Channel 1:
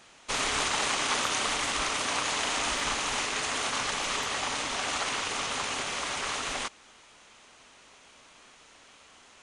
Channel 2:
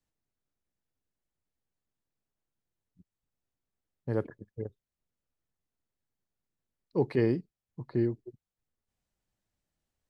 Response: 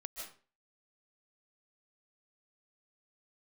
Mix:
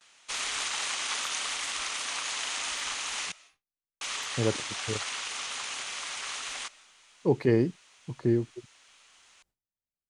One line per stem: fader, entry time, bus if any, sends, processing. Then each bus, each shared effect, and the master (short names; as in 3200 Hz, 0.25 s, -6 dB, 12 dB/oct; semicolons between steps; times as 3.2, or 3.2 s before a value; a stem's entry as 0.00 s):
-10.0 dB, 0.00 s, muted 3.32–4.01, send -15.5 dB, tilt shelf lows -8 dB, about 880 Hz
+3.0 dB, 0.30 s, no send, dry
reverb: on, RT60 0.40 s, pre-delay 0.11 s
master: gate with hold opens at -51 dBFS